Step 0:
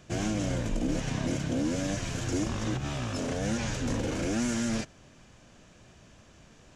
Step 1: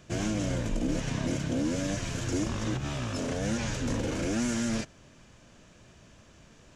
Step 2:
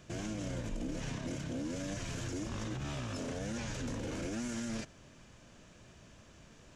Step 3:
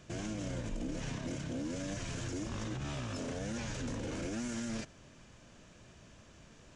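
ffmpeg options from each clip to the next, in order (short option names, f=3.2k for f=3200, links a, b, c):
-af "bandreject=f=760:w=18"
-af "alimiter=level_in=4.5dB:limit=-24dB:level=0:latency=1:release=71,volume=-4.5dB,volume=-2dB"
-af "aresample=22050,aresample=44100"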